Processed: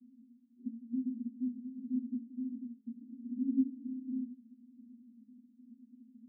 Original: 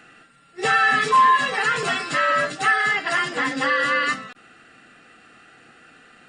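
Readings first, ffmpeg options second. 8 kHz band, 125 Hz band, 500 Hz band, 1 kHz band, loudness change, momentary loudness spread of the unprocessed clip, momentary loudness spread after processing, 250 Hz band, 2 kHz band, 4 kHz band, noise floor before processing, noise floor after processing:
below −40 dB, below −15 dB, below −40 dB, below −40 dB, −19.5 dB, 7 LU, 23 LU, +0.5 dB, below −40 dB, below −40 dB, −53 dBFS, −65 dBFS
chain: -filter_complex "[0:a]asplit=2[link_01][link_02];[link_02]alimiter=limit=-16.5dB:level=0:latency=1,volume=2.5dB[link_03];[link_01][link_03]amix=inputs=2:normalize=0,asuperpass=centerf=240:order=8:qfactor=5.1"

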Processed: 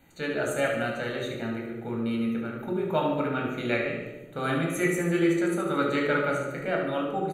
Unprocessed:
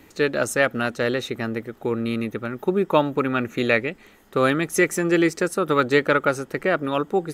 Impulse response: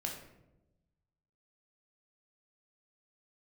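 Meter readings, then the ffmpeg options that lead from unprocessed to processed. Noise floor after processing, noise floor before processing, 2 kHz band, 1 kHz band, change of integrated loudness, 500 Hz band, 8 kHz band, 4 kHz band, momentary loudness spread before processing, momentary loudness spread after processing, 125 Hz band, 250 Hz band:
−43 dBFS, −52 dBFS, −6.5 dB, −6.0 dB, −5.5 dB, −6.0 dB, −8.5 dB, −6.5 dB, 9 LU, 8 LU, −3.0 dB, −4.0 dB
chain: -filter_complex "[0:a]asuperstop=centerf=5300:order=8:qfactor=4.2,aecho=1:1:74|148|222|296|370|444:0.398|0.215|0.116|0.0627|0.0339|0.0183[link_01];[1:a]atrim=start_sample=2205[link_02];[link_01][link_02]afir=irnorm=-1:irlink=0,volume=-8dB"

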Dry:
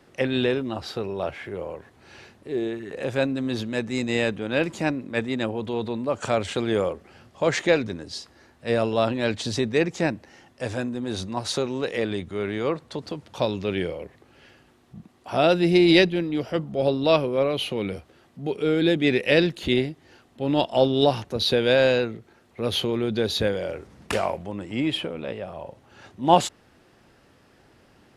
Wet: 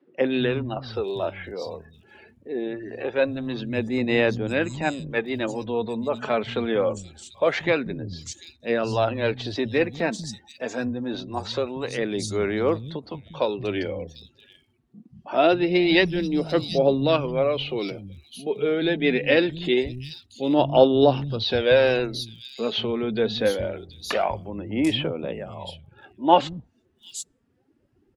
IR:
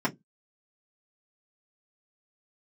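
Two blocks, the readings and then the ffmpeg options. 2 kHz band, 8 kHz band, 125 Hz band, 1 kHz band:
+0.5 dB, −1.5 dB, −1.0 dB, +1.0 dB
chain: -filter_complex "[0:a]afftdn=noise_reduction=21:noise_floor=-46,aphaser=in_gain=1:out_gain=1:delay=4.7:decay=0.4:speed=0.24:type=sinusoidal,acrossover=split=180|4600[link_01][link_02][link_03];[link_01]adelay=190[link_04];[link_03]adelay=740[link_05];[link_04][link_02][link_05]amix=inputs=3:normalize=0"

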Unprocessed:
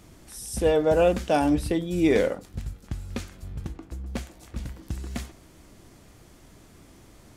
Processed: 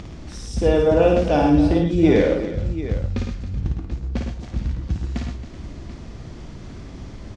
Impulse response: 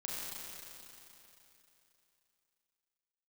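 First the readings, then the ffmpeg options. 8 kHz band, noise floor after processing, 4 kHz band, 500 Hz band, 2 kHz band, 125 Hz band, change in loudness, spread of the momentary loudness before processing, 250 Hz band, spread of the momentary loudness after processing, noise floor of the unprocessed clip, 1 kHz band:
can't be measured, −37 dBFS, +3.0 dB, +4.5 dB, +3.0 dB, +10.0 dB, +5.0 dB, 17 LU, +7.0 dB, 22 LU, −53 dBFS, +3.5 dB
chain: -af "lowpass=frequency=6000:width=0.5412,lowpass=frequency=6000:width=1.3066,lowshelf=frequency=290:gain=9,acompressor=mode=upward:threshold=-29dB:ratio=2.5,aecho=1:1:54|108|125|274|379|735:0.631|0.398|0.376|0.224|0.15|0.237"

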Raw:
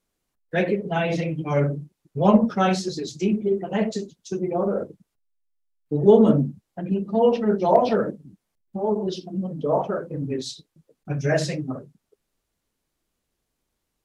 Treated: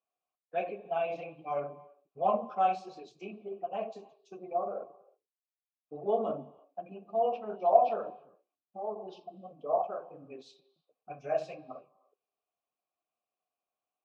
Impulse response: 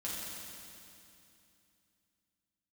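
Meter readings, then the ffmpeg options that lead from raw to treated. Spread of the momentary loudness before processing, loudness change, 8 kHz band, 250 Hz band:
14 LU, −10.0 dB, can't be measured, −24.0 dB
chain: -filter_complex "[0:a]asplit=3[link_01][link_02][link_03];[link_01]bandpass=frequency=730:width_type=q:width=8,volume=0dB[link_04];[link_02]bandpass=frequency=1090:width_type=q:width=8,volume=-6dB[link_05];[link_03]bandpass=frequency=2440:width_type=q:width=8,volume=-9dB[link_06];[link_04][link_05][link_06]amix=inputs=3:normalize=0,asplit=2[link_07][link_08];[link_08]highpass=frequency=380:width=0.5412,highpass=frequency=380:width=1.3066,equalizer=frequency=640:width_type=q:width=4:gain=-5,equalizer=frequency=1000:width_type=q:width=4:gain=6,equalizer=frequency=1400:width_type=q:width=4:gain=-7,equalizer=frequency=2000:width_type=q:width=4:gain=-8,lowpass=frequency=4000:width=0.5412,lowpass=frequency=4000:width=1.3066[link_09];[1:a]atrim=start_sample=2205,afade=type=out:start_time=0.25:duration=0.01,atrim=end_sample=11466,asetrate=26019,aresample=44100[link_10];[link_09][link_10]afir=irnorm=-1:irlink=0,volume=-20dB[link_11];[link_07][link_11]amix=inputs=2:normalize=0"

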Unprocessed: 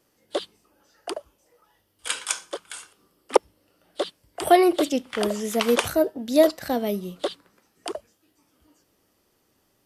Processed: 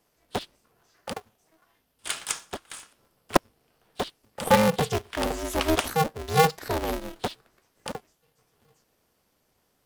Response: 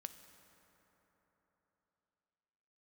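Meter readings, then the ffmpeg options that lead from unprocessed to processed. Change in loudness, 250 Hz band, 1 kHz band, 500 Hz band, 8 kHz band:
−3.0 dB, −5.0 dB, 0.0 dB, −5.0 dB, −1.5 dB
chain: -af "aeval=exprs='val(0)*sgn(sin(2*PI*160*n/s))':channel_layout=same,volume=-3dB"

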